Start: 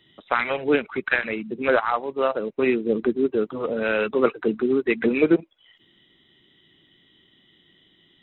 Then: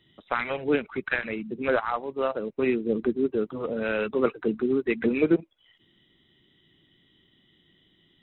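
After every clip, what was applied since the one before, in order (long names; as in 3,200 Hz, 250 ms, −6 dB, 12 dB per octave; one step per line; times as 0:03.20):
low-shelf EQ 210 Hz +7.5 dB
level −5.5 dB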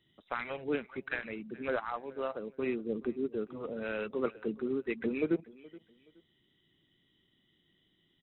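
repeating echo 423 ms, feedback 29%, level −21.5 dB
level −9 dB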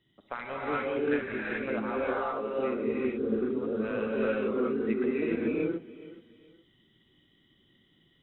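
high-shelf EQ 3,400 Hz −7.5 dB
downward compressor 1.5 to 1, threshold −37 dBFS, peak gain reduction 5 dB
reverb whose tail is shaped and stops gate 450 ms rising, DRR −5.5 dB
level +1.5 dB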